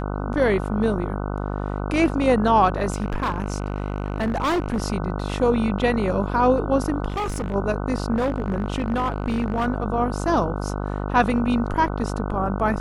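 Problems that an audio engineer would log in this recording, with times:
buzz 50 Hz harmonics 30 -27 dBFS
2.9–4.82 clipped -19 dBFS
7.08–7.55 clipped -22.5 dBFS
8.15–9.66 clipped -18 dBFS

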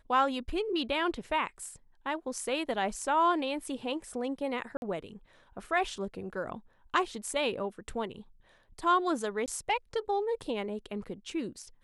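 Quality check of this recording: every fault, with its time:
4.77–4.82 gap 51 ms
9.46–9.48 gap 18 ms

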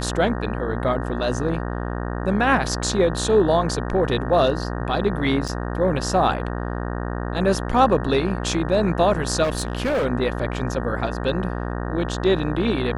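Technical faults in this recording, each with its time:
buzz 60 Hz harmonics 31 -27 dBFS
5.48–5.49 gap 6.1 ms
9.43–10.06 clipped -18.5 dBFS

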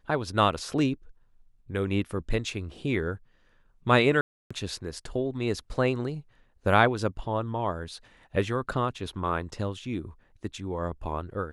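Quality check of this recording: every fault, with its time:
4.21–4.5 gap 0.295 s

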